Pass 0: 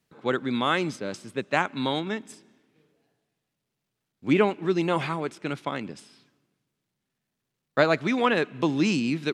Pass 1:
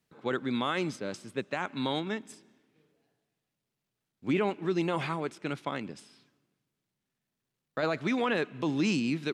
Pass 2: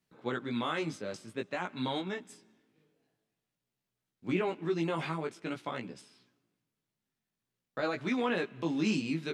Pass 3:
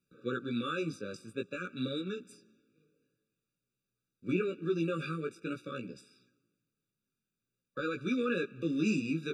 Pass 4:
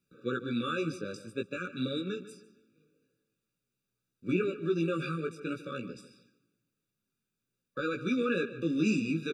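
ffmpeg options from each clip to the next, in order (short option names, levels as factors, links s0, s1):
-af "alimiter=limit=0.168:level=0:latency=1:release=23,volume=0.668"
-af "flanger=delay=16:depth=2.8:speed=0.5"
-af "afftfilt=real='re*eq(mod(floor(b*sr/1024/570),2),0)':imag='im*eq(mod(floor(b*sr/1024/570),2),0)':win_size=1024:overlap=0.75"
-filter_complex "[0:a]asplit=2[s0][s1];[s1]adelay=148,lowpass=f=3700:p=1,volume=0.2,asplit=2[s2][s3];[s3]adelay=148,lowpass=f=3700:p=1,volume=0.31,asplit=2[s4][s5];[s5]adelay=148,lowpass=f=3700:p=1,volume=0.31[s6];[s0][s2][s4][s6]amix=inputs=4:normalize=0,volume=1.26"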